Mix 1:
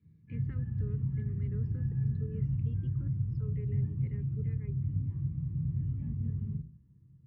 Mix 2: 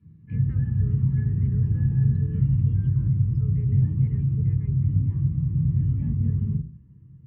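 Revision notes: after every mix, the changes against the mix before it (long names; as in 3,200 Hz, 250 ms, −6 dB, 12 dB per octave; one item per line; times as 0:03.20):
background +10.5 dB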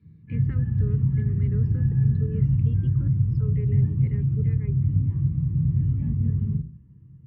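speech +9.0 dB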